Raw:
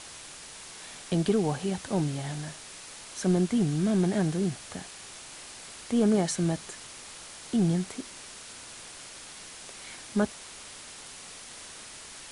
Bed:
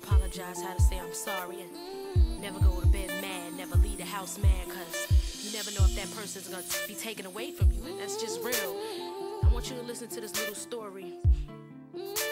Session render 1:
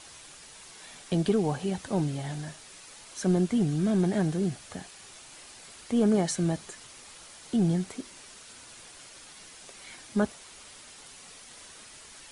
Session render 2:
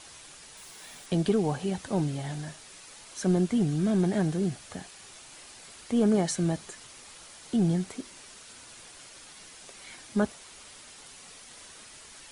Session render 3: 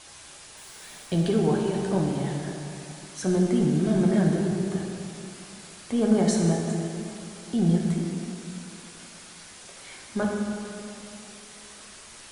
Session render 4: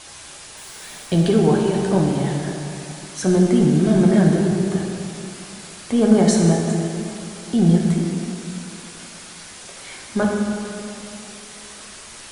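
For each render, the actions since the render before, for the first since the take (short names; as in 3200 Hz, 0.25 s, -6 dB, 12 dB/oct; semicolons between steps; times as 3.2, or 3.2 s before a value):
denoiser 6 dB, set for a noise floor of -46 dBFS
0.57–1.06 switching spikes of -52.5 dBFS
plate-style reverb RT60 2.8 s, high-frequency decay 0.6×, DRR -0.5 dB
gain +7 dB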